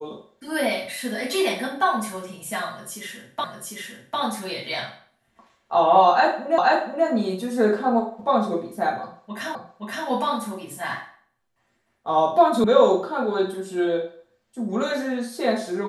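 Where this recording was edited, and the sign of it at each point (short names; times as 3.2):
3.44 repeat of the last 0.75 s
6.58 repeat of the last 0.48 s
9.55 repeat of the last 0.52 s
12.64 sound cut off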